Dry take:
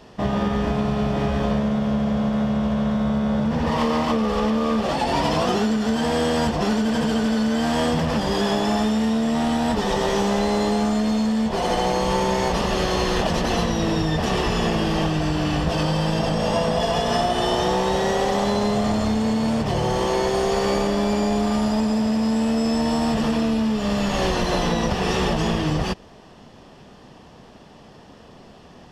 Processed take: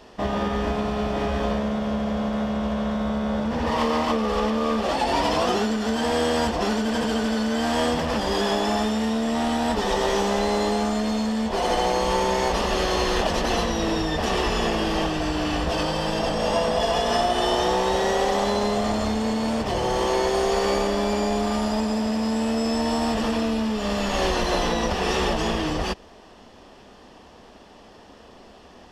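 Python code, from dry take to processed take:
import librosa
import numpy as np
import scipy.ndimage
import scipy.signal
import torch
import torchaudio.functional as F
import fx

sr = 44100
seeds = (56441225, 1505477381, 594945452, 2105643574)

y = fx.peak_eq(x, sr, hz=140.0, db=-12.5, octaves=0.84)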